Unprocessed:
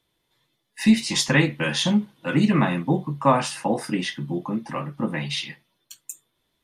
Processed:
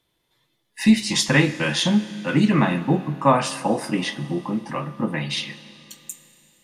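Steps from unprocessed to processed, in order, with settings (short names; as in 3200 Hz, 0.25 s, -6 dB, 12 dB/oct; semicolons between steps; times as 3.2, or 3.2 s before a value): Schroeder reverb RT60 3.1 s, combs from 26 ms, DRR 14.5 dB; gain +1.5 dB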